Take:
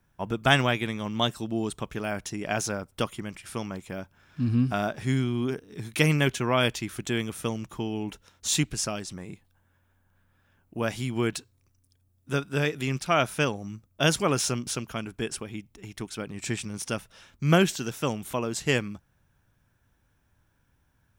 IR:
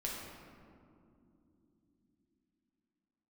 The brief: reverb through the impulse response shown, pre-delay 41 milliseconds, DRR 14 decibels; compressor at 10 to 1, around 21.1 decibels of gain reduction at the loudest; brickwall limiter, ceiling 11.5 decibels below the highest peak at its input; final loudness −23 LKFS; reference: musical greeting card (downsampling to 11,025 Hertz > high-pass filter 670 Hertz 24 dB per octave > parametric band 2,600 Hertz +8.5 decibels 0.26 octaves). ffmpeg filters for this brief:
-filter_complex "[0:a]acompressor=threshold=-37dB:ratio=10,alimiter=level_in=8dB:limit=-24dB:level=0:latency=1,volume=-8dB,asplit=2[link_01][link_02];[1:a]atrim=start_sample=2205,adelay=41[link_03];[link_02][link_03]afir=irnorm=-1:irlink=0,volume=-15.5dB[link_04];[link_01][link_04]amix=inputs=2:normalize=0,aresample=11025,aresample=44100,highpass=frequency=670:width=0.5412,highpass=frequency=670:width=1.3066,equalizer=frequency=2600:width_type=o:width=0.26:gain=8.5,volume=24dB"

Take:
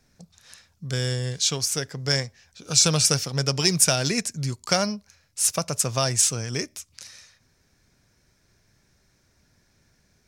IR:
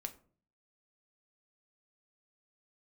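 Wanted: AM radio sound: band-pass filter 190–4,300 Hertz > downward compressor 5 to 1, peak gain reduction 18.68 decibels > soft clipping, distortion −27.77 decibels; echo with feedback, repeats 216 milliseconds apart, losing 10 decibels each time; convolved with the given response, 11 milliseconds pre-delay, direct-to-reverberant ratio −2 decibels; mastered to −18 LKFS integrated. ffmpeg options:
-filter_complex "[0:a]aecho=1:1:216|432|648|864:0.316|0.101|0.0324|0.0104,asplit=2[link_01][link_02];[1:a]atrim=start_sample=2205,adelay=11[link_03];[link_02][link_03]afir=irnorm=-1:irlink=0,volume=4.5dB[link_04];[link_01][link_04]amix=inputs=2:normalize=0,highpass=190,lowpass=4300,acompressor=threshold=-34dB:ratio=5,asoftclip=threshold=-20dB,volume=18.5dB"

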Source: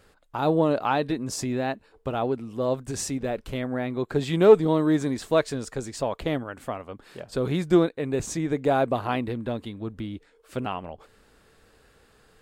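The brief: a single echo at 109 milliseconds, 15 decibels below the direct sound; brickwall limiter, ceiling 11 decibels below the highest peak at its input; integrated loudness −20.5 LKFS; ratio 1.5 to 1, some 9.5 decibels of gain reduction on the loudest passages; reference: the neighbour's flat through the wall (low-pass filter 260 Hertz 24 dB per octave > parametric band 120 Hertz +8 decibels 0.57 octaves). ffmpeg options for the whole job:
ffmpeg -i in.wav -af "acompressor=threshold=-36dB:ratio=1.5,alimiter=level_in=1dB:limit=-24dB:level=0:latency=1,volume=-1dB,lowpass=frequency=260:width=0.5412,lowpass=frequency=260:width=1.3066,equalizer=frequency=120:width_type=o:width=0.57:gain=8,aecho=1:1:109:0.178,volume=17dB" out.wav

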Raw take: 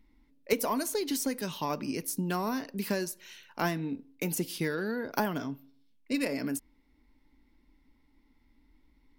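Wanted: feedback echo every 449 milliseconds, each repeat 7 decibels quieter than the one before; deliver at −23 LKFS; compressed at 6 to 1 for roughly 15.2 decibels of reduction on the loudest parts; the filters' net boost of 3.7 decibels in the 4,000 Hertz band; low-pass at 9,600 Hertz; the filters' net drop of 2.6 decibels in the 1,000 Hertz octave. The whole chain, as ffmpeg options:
ffmpeg -i in.wav -af "lowpass=9600,equalizer=frequency=1000:width_type=o:gain=-3.5,equalizer=frequency=4000:width_type=o:gain=5,acompressor=threshold=-39dB:ratio=6,aecho=1:1:449|898|1347|1796|2245:0.447|0.201|0.0905|0.0407|0.0183,volume=19.5dB" out.wav

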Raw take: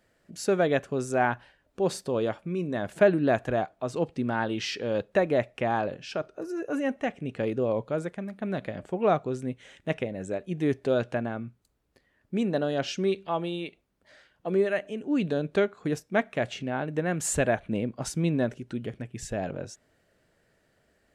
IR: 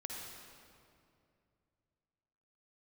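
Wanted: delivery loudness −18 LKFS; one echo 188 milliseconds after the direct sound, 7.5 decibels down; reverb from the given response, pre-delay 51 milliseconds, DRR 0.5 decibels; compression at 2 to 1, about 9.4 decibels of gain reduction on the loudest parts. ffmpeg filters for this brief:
-filter_complex "[0:a]acompressor=threshold=-32dB:ratio=2,aecho=1:1:188:0.422,asplit=2[link_01][link_02];[1:a]atrim=start_sample=2205,adelay=51[link_03];[link_02][link_03]afir=irnorm=-1:irlink=0,volume=0.5dB[link_04];[link_01][link_04]amix=inputs=2:normalize=0,volume=12.5dB"

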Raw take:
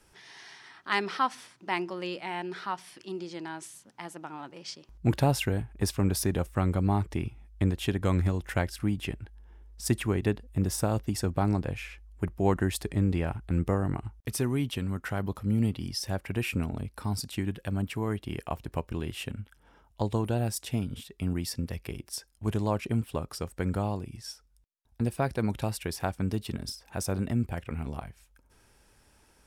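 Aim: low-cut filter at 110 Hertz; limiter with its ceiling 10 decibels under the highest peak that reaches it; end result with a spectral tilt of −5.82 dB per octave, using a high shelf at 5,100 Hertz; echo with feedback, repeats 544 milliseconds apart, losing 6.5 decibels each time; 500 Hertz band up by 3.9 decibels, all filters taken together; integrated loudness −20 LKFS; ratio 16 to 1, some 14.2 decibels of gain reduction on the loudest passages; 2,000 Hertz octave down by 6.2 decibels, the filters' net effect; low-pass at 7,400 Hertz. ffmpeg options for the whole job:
ffmpeg -i in.wav -af "highpass=110,lowpass=7400,equalizer=frequency=500:width_type=o:gain=5.5,equalizer=frequency=2000:width_type=o:gain=-7,highshelf=frequency=5100:gain=-8.5,acompressor=threshold=-33dB:ratio=16,alimiter=level_in=4dB:limit=-24dB:level=0:latency=1,volume=-4dB,aecho=1:1:544|1088|1632|2176|2720|3264:0.473|0.222|0.105|0.0491|0.0231|0.0109,volume=21.5dB" out.wav

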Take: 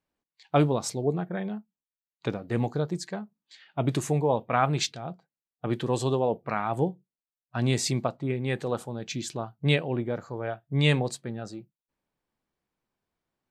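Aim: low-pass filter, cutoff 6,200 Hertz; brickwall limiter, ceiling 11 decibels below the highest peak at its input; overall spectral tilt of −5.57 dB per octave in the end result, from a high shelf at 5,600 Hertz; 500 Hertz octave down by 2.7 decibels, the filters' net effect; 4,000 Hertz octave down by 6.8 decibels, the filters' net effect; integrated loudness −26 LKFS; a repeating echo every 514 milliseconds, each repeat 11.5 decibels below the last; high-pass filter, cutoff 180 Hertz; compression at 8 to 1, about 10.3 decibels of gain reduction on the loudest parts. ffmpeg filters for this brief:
ffmpeg -i in.wav -af "highpass=180,lowpass=6200,equalizer=frequency=500:width_type=o:gain=-3,equalizer=frequency=4000:width_type=o:gain=-5,highshelf=frequency=5600:gain=-8,acompressor=threshold=-30dB:ratio=8,alimiter=level_in=3.5dB:limit=-24dB:level=0:latency=1,volume=-3.5dB,aecho=1:1:514|1028|1542:0.266|0.0718|0.0194,volume=14dB" out.wav

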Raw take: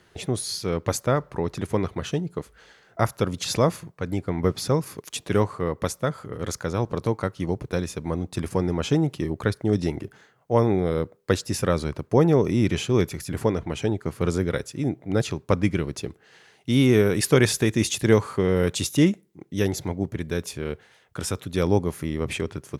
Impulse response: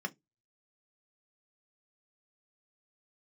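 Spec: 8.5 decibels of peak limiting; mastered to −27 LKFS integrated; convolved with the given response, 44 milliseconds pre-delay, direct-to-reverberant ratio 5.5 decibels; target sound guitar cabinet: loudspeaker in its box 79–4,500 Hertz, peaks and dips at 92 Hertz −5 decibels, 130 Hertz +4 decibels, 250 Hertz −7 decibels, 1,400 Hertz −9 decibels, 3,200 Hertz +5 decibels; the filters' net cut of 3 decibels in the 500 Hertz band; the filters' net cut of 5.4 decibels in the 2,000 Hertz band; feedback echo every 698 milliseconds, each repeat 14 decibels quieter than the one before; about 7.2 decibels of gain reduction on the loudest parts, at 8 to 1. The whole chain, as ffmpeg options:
-filter_complex "[0:a]equalizer=frequency=500:width_type=o:gain=-3,equalizer=frequency=2000:width_type=o:gain=-4.5,acompressor=threshold=-21dB:ratio=8,alimiter=limit=-18dB:level=0:latency=1,aecho=1:1:698|1396:0.2|0.0399,asplit=2[link_01][link_02];[1:a]atrim=start_sample=2205,adelay=44[link_03];[link_02][link_03]afir=irnorm=-1:irlink=0,volume=-8dB[link_04];[link_01][link_04]amix=inputs=2:normalize=0,highpass=79,equalizer=frequency=92:width_type=q:width=4:gain=-5,equalizer=frequency=130:width_type=q:width=4:gain=4,equalizer=frequency=250:width_type=q:width=4:gain=-7,equalizer=frequency=1400:width_type=q:width=4:gain=-9,equalizer=frequency=3200:width_type=q:width=4:gain=5,lowpass=frequency=4500:width=0.5412,lowpass=frequency=4500:width=1.3066,volume=4dB"

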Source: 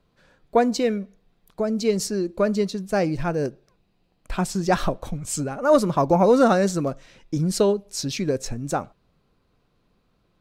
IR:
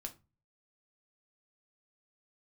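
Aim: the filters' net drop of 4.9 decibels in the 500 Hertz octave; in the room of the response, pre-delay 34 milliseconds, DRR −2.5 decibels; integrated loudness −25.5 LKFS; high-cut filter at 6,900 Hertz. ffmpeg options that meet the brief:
-filter_complex "[0:a]lowpass=6900,equalizer=frequency=500:width_type=o:gain=-6,asplit=2[link_01][link_02];[1:a]atrim=start_sample=2205,adelay=34[link_03];[link_02][link_03]afir=irnorm=-1:irlink=0,volume=5.5dB[link_04];[link_01][link_04]amix=inputs=2:normalize=0,volume=-4.5dB"

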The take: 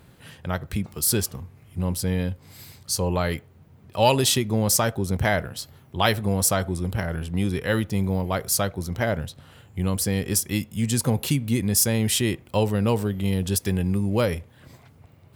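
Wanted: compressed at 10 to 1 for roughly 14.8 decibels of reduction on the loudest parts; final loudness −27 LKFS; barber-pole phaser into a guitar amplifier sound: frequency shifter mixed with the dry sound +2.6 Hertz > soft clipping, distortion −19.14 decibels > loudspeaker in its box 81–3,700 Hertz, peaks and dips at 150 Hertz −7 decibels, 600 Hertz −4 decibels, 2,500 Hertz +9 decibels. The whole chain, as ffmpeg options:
ffmpeg -i in.wav -filter_complex "[0:a]acompressor=threshold=-29dB:ratio=10,asplit=2[link_01][link_02];[link_02]afreqshift=2.6[link_03];[link_01][link_03]amix=inputs=2:normalize=1,asoftclip=threshold=-27.5dB,highpass=81,equalizer=frequency=150:width_type=q:width=4:gain=-7,equalizer=frequency=600:width_type=q:width=4:gain=-4,equalizer=frequency=2500:width_type=q:width=4:gain=9,lowpass=frequency=3700:width=0.5412,lowpass=frequency=3700:width=1.3066,volume=13.5dB" out.wav

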